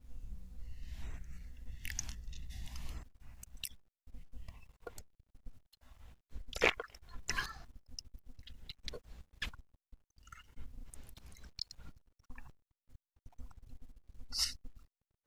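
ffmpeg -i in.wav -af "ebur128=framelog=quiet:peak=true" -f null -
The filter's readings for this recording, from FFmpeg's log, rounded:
Integrated loudness:
  I:         -42.1 LUFS
  Threshold: -54.7 LUFS
Loudness range:
  LRA:        12.8 LU
  Threshold: -64.9 LUFS
  LRA low:   -52.8 LUFS
  LRA high:  -40.1 LUFS
True peak:
  Peak:      -12.9 dBFS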